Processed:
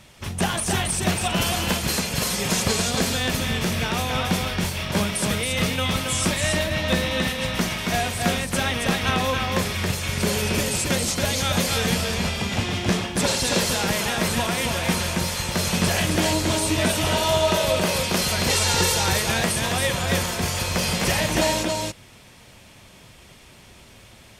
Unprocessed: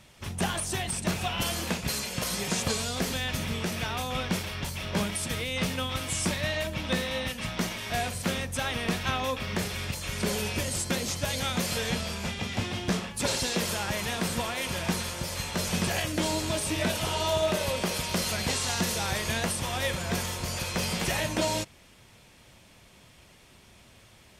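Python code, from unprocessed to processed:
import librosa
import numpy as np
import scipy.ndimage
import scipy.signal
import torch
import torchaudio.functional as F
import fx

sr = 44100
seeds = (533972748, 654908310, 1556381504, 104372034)

y = fx.comb(x, sr, ms=2.2, depth=0.8, at=(18.5, 18.95))
y = y + 10.0 ** (-3.5 / 20.0) * np.pad(y, (int(275 * sr / 1000.0), 0))[:len(y)]
y = y * librosa.db_to_amplitude(5.5)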